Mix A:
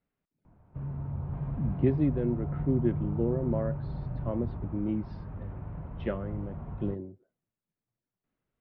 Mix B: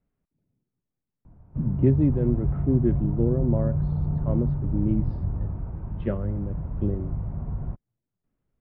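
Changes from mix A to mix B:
background: entry +0.80 s; master: add tilt -2.5 dB/oct

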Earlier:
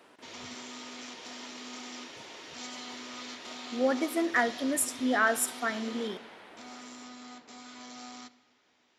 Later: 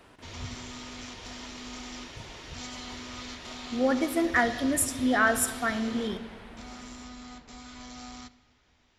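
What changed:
speech: send +10.5 dB; master: remove Chebyshev high-pass 300 Hz, order 2

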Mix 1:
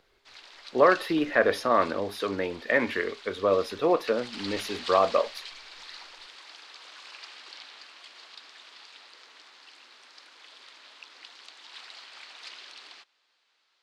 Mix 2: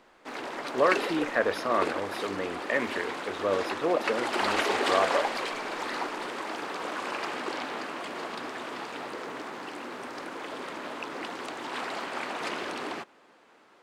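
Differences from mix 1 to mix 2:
speech -4.0 dB; background: remove band-pass 4300 Hz, Q 2.1

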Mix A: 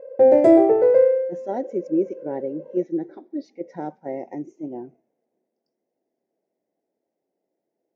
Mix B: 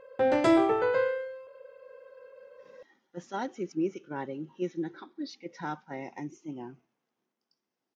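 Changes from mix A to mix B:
speech: entry +1.85 s; master: remove EQ curve 130 Hz 0 dB, 630 Hz +14 dB, 1200 Hz -14 dB, 2000 Hz -3 dB, 3100 Hz -16 dB, 7900 Hz -5 dB

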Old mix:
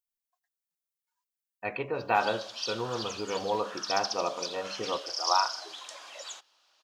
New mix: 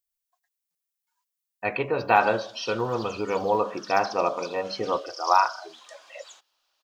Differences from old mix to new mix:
speech +6.5 dB; background -6.5 dB

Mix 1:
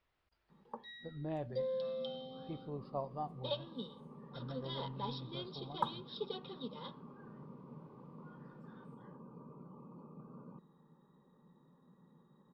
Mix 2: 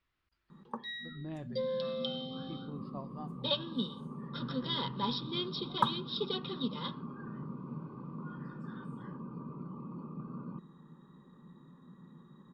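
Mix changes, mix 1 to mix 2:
background +10.5 dB; master: add band shelf 620 Hz -8 dB 1.3 oct

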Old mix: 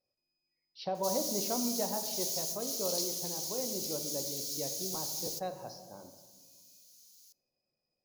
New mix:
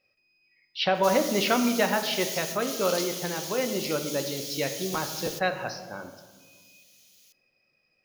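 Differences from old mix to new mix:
speech +10.0 dB; master: add band shelf 2100 Hz +15.5 dB

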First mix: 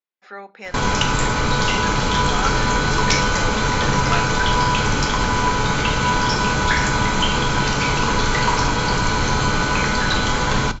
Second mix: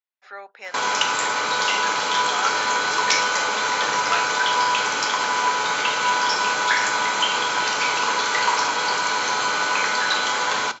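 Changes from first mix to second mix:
speech: send off; master: add HPF 600 Hz 12 dB/oct

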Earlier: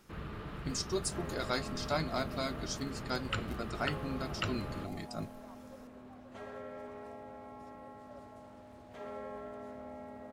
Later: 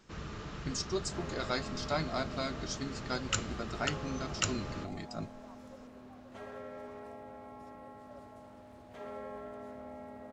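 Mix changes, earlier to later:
speech: add steep low-pass 7900 Hz 72 dB/oct; first sound: remove running mean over 7 samples

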